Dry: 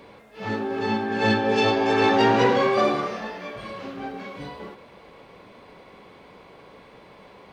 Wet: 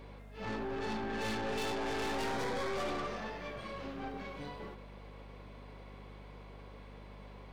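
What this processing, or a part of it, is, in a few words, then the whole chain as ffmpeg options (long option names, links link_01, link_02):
valve amplifier with mains hum: -filter_complex "[0:a]aeval=exprs='(tanh(28.2*val(0)+0.45)-tanh(0.45))/28.2':channel_layout=same,aeval=exprs='val(0)+0.00562*(sin(2*PI*50*n/s)+sin(2*PI*2*50*n/s)/2+sin(2*PI*3*50*n/s)/3+sin(2*PI*4*50*n/s)/4+sin(2*PI*5*50*n/s)/5)':channel_layout=same,asettb=1/sr,asplit=3[link_01][link_02][link_03];[link_01]atrim=end=2.324[link_04];[link_02]atrim=start=2.32:end=2.74,asetpts=PTS-STARTPTS,afade=type=in:duration=0.004:curve=qsin,afade=type=out:start_time=0.416:duration=0.004:curve=qsin,bandreject=frequency=2800:width=6.4[link_05];[link_03]atrim=start=2.736[link_06];[link_04][link_05]acrossfade=duration=0.004:curve1=hsin:curve2=qsin[link_07];[link_07][link_06]acrossfade=duration=0.004:curve1=qsin:curve2=hsin,volume=-5.5dB"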